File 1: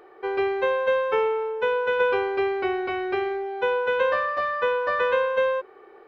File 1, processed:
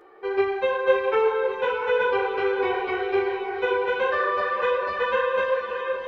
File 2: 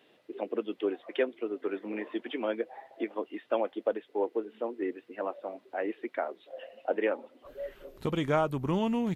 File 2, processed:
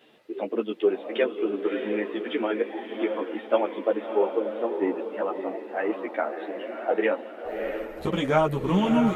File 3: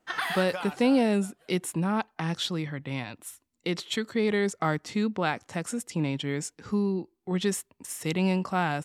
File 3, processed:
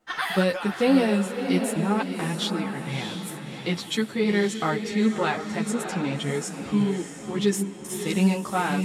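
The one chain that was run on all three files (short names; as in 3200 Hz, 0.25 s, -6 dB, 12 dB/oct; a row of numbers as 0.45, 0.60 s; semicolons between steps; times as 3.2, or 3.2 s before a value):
diffused feedback echo 0.639 s, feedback 44%, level -6.5 dB; ensemble effect; normalise peaks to -9 dBFS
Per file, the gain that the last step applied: +2.5, +8.5, +5.0 dB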